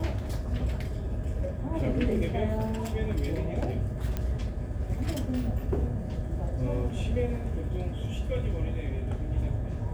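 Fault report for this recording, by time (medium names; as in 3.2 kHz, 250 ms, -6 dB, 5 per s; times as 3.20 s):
4.17 s: pop -18 dBFS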